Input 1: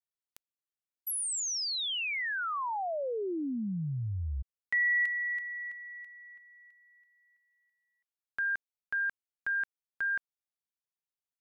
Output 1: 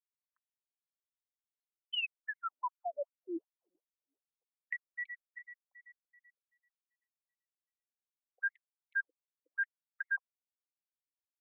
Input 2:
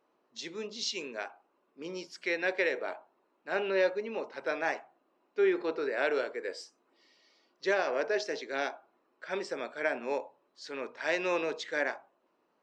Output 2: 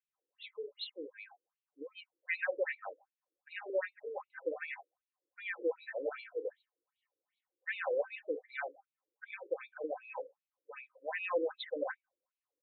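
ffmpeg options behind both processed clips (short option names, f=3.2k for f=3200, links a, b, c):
-af "aecho=1:1:3.9:0.61,afftdn=nr=15:nf=-43,afftfilt=real='re*between(b*sr/1024,370*pow(3100/370,0.5+0.5*sin(2*PI*2.6*pts/sr))/1.41,370*pow(3100/370,0.5+0.5*sin(2*PI*2.6*pts/sr))*1.41)':imag='im*between(b*sr/1024,370*pow(3100/370,0.5+0.5*sin(2*PI*2.6*pts/sr))/1.41,370*pow(3100/370,0.5+0.5*sin(2*PI*2.6*pts/sr))*1.41)':win_size=1024:overlap=0.75,volume=-1.5dB"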